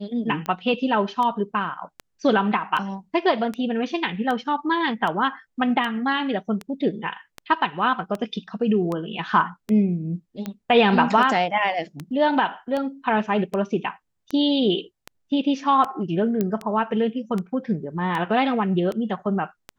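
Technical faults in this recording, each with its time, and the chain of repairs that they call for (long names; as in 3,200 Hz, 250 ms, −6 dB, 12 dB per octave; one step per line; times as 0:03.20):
scratch tick 78 rpm −16 dBFS
0:16.41: click −11 dBFS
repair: click removal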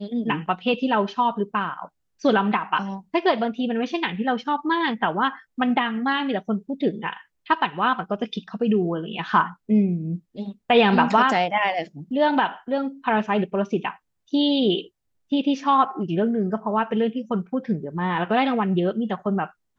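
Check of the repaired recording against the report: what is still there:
none of them is left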